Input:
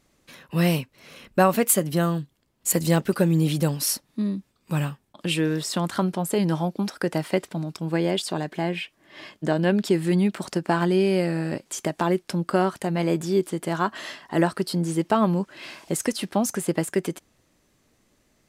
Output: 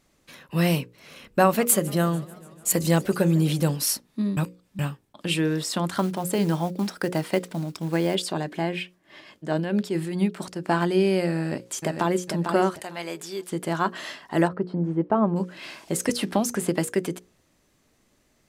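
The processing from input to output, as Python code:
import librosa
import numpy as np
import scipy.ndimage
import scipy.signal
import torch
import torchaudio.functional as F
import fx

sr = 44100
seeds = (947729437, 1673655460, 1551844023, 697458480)

y = fx.echo_warbled(x, sr, ms=147, feedback_pct=71, rate_hz=2.8, cents=203, wet_db=-21.5, at=(1.43, 3.76))
y = fx.quant_companded(y, sr, bits=6, at=(5.97, 8.15))
y = fx.tremolo(y, sr, hz=4.6, depth=0.63, at=(8.82, 10.69), fade=0.02)
y = fx.echo_throw(y, sr, start_s=11.37, length_s=0.85, ms=450, feedback_pct=25, wet_db=-6.0)
y = fx.highpass(y, sr, hz=1300.0, slope=6, at=(12.79, 13.52))
y = fx.lowpass(y, sr, hz=1100.0, slope=12, at=(14.47, 15.35), fade=0.02)
y = fx.band_squash(y, sr, depth_pct=70, at=(16.09, 16.85))
y = fx.edit(y, sr, fx.reverse_span(start_s=4.37, length_s=0.42), tone=tone)
y = fx.hum_notches(y, sr, base_hz=60, count=9)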